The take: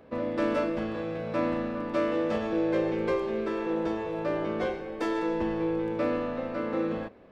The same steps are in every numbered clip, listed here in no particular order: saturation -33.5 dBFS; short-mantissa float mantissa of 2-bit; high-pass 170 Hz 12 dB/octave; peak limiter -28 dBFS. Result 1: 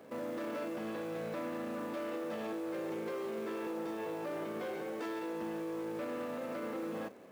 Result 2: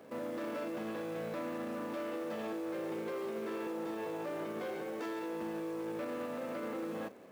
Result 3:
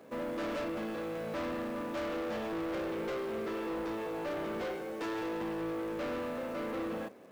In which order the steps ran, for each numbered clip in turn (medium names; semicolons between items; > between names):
peak limiter > short-mantissa float > saturation > high-pass; short-mantissa float > peak limiter > saturation > high-pass; high-pass > short-mantissa float > saturation > peak limiter